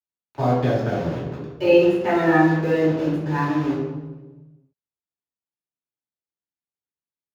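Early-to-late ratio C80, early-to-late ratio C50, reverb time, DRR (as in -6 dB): 3.0 dB, 0.0 dB, 1.2 s, -9.0 dB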